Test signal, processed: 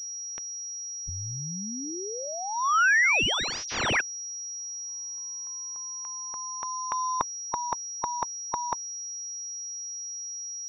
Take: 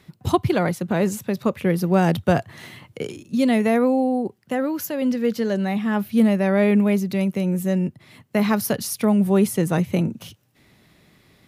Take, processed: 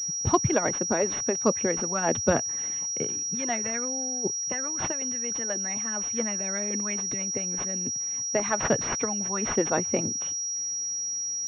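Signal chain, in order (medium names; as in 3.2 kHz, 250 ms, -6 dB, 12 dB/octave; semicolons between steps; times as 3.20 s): harmonic-percussive split harmonic -18 dB; class-D stage that switches slowly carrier 5.7 kHz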